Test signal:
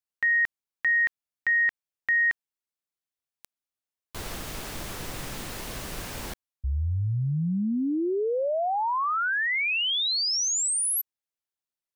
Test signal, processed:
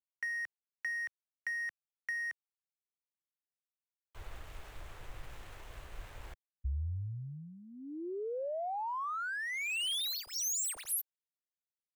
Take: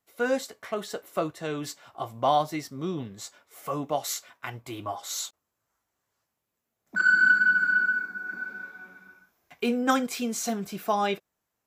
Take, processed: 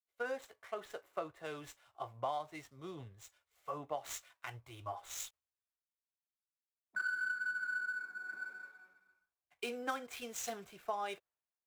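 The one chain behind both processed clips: median filter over 9 samples; bell 210 Hz -14.5 dB 1.3 oct; compressor 8:1, threshold -30 dBFS; three-band expander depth 70%; gain -6 dB

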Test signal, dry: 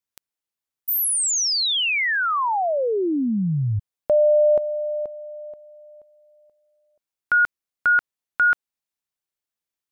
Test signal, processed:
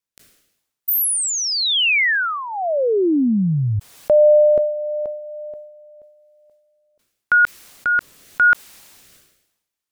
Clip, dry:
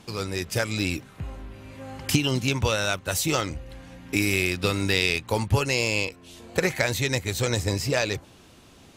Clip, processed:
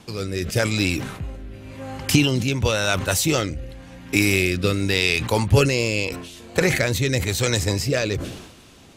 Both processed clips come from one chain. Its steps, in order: rotary speaker horn 0.9 Hz; sustainer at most 61 dB/s; gain +5.5 dB

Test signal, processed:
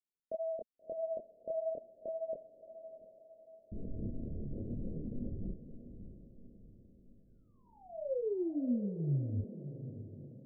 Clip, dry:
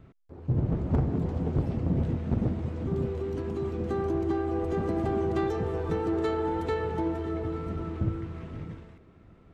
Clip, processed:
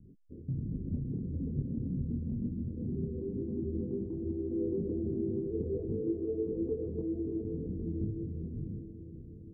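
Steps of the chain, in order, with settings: formant sharpening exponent 2; steep low-pass 550 Hz 48 dB/oct; bell 230 Hz +8 dB 0.72 oct; compressor, threshold -29 dBFS; chorus voices 4, 0.78 Hz, delay 25 ms, depth 4.7 ms; diffused feedback echo 0.647 s, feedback 47%, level -11 dB

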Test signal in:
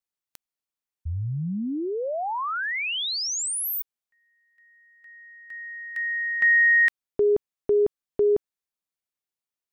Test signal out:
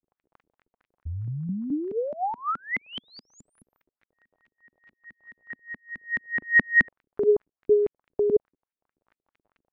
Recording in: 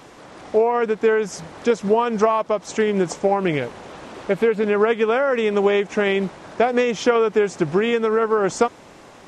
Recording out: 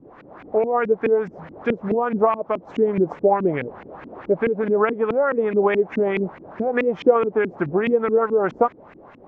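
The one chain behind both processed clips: crackle 31/s -41 dBFS; LFO low-pass saw up 4.7 Hz 220–2500 Hz; gain -3.5 dB

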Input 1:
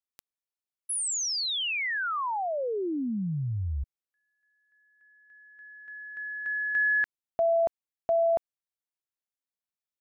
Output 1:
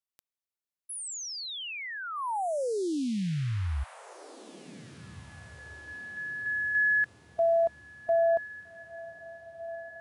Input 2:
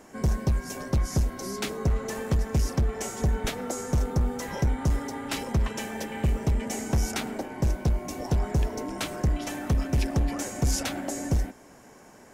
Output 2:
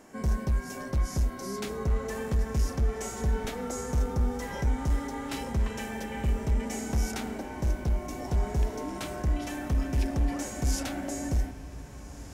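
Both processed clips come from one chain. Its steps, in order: diffused feedback echo 1.709 s, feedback 45%, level -16 dB; harmonic-percussive split percussive -8 dB

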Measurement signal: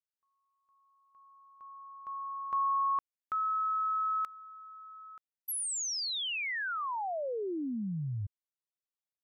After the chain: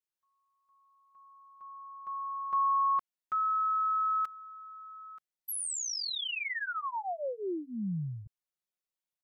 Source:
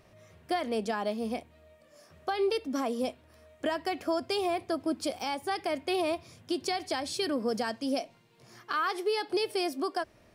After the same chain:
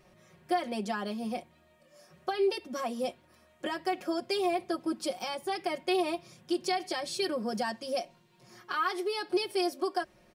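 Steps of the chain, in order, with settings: comb 5.5 ms, depth 96%; gain -3.5 dB

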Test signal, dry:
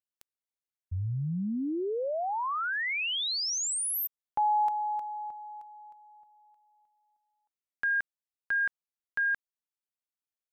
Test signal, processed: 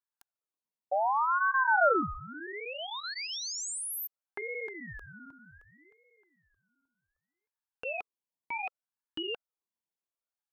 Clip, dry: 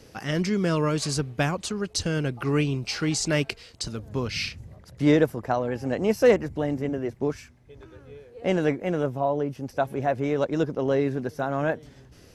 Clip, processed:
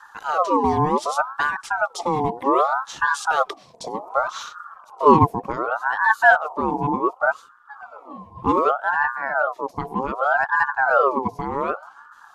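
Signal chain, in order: LFO notch sine 7.7 Hz 210–3100 Hz; resonant low shelf 540 Hz +9 dB, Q 3; ring modulator with a swept carrier 950 Hz, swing 40%, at 0.66 Hz; gain -2.5 dB

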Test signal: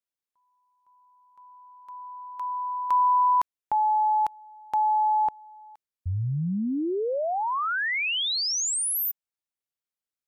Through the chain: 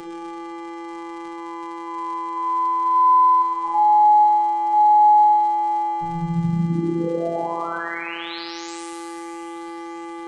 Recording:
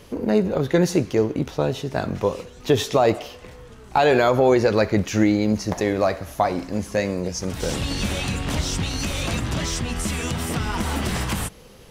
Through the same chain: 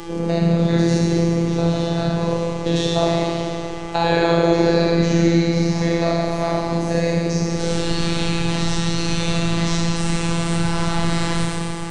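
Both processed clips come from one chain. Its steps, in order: stepped spectrum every 0.1 s; buzz 400 Hz, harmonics 22, -39 dBFS -9 dB/oct; Schroeder reverb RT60 2.1 s, combs from 28 ms, DRR -3.5 dB; crackle 100/s -35 dBFS; thin delay 0.632 s, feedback 50%, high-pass 1800 Hz, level -18 dB; dynamic EQ 4100 Hz, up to +7 dB, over -49 dBFS, Q 5.8; steep low-pass 9400 Hz 48 dB/oct; robotiser 168 Hz; low shelf 160 Hz +8 dB; three-band squash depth 40%

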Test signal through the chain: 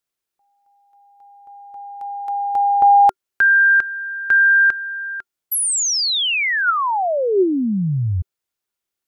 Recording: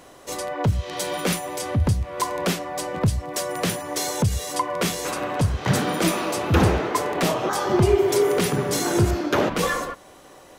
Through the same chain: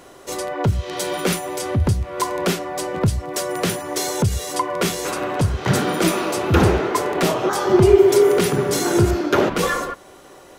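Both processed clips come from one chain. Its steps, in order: small resonant body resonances 380/1400 Hz, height 7 dB, ringing for 60 ms; gain +2 dB

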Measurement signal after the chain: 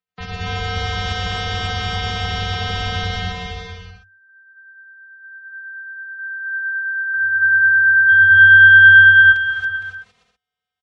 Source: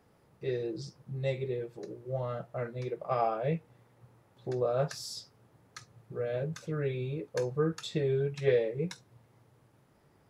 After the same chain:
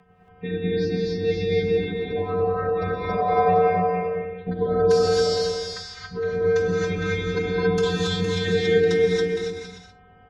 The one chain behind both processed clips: tracing distortion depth 0.039 ms; low-pass opened by the level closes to 2800 Hz, open at -24 dBFS; robotiser 278 Hz; spectral gate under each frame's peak -30 dB strong; frequency shift -97 Hz; in parallel at +2 dB: limiter -31.5 dBFS; on the sum: tremolo 9.1 Hz, depth 39%; on a send: bouncing-ball echo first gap 0.28 s, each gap 0.65×, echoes 5; on the sum: non-linear reverb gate 0.3 s rising, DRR -3.5 dB; gain +7 dB

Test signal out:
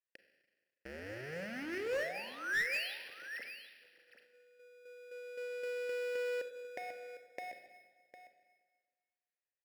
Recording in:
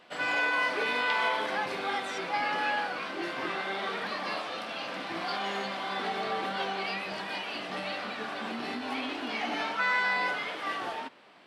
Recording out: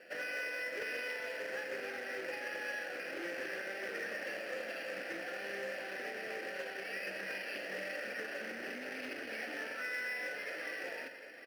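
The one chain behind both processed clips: half-waves squared off; compressor 4:1, threshold -37 dBFS; vowel filter e; band shelf 2200 Hz +8 dB; echo 0.755 s -13 dB; Schroeder reverb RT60 1.5 s, combs from 32 ms, DRR 7.5 dB; careless resampling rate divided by 6×, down filtered, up hold; EQ curve 340 Hz 0 dB, 520 Hz -8 dB, 1100 Hz -1 dB, 8000 Hz -17 dB; one-sided clip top -41 dBFS, bottom -36 dBFS; Doppler distortion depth 0.13 ms; gain +10 dB

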